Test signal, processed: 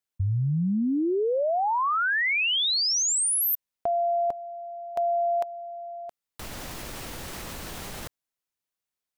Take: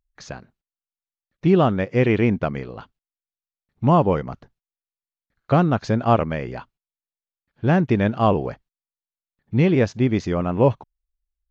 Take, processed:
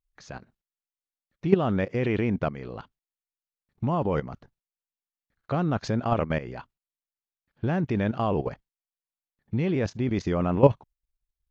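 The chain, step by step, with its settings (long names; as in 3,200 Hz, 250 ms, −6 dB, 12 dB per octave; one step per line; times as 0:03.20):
output level in coarse steps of 13 dB
level +1.5 dB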